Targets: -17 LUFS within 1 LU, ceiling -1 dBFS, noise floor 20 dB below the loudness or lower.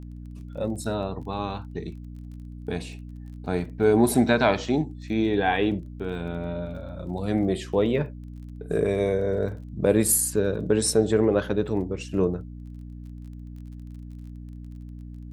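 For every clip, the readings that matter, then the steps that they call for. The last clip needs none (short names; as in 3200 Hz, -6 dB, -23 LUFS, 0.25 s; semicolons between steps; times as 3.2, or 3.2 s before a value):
ticks 27/s; hum 60 Hz; harmonics up to 300 Hz; hum level -37 dBFS; loudness -25.0 LUFS; peak -6.5 dBFS; loudness target -17.0 LUFS
-> de-click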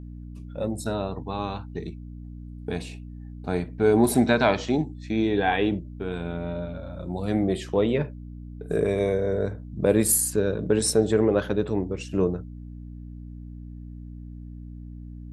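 ticks 0/s; hum 60 Hz; harmonics up to 300 Hz; hum level -37 dBFS
-> de-hum 60 Hz, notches 5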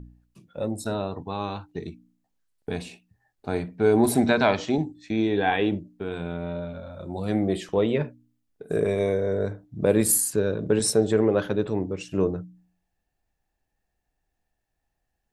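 hum none; loudness -25.0 LUFS; peak -6.0 dBFS; loudness target -17.0 LUFS
-> gain +8 dB; limiter -1 dBFS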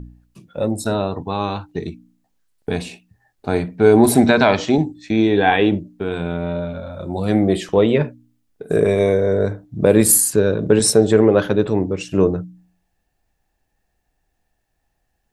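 loudness -17.5 LUFS; peak -1.0 dBFS; noise floor -72 dBFS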